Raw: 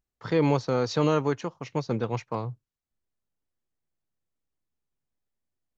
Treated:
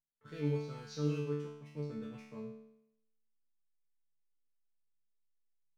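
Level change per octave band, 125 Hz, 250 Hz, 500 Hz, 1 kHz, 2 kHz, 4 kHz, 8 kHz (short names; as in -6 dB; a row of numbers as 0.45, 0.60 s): -9.0 dB, -11.5 dB, -14.0 dB, -23.0 dB, -16.0 dB, -14.5 dB, n/a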